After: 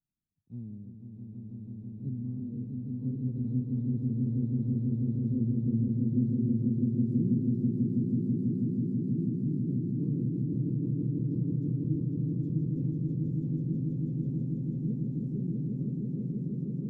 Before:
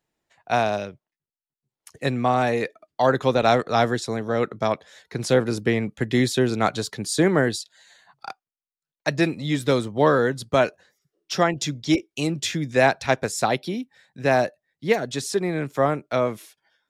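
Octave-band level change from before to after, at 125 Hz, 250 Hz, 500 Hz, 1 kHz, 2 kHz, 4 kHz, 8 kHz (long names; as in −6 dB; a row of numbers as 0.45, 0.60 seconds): +1.0 dB, −3.0 dB, −23.5 dB, below −40 dB, below −40 dB, below −40 dB, below −40 dB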